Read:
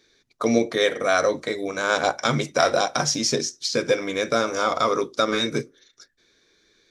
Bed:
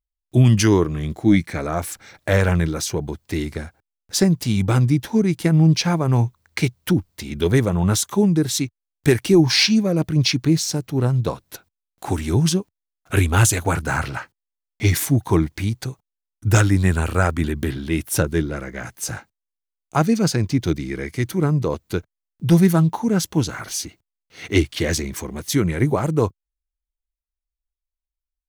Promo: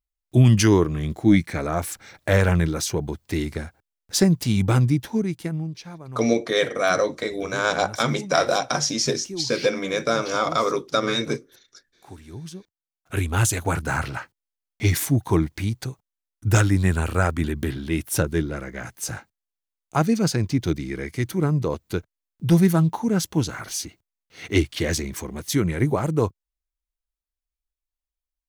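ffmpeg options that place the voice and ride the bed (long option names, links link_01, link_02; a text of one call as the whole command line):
ffmpeg -i stem1.wav -i stem2.wav -filter_complex "[0:a]adelay=5750,volume=-0.5dB[link_01];[1:a]volume=16dB,afade=type=out:start_time=4.73:duration=0.99:silence=0.11885,afade=type=in:start_time=12.52:duration=1.29:silence=0.141254[link_02];[link_01][link_02]amix=inputs=2:normalize=0" out.wav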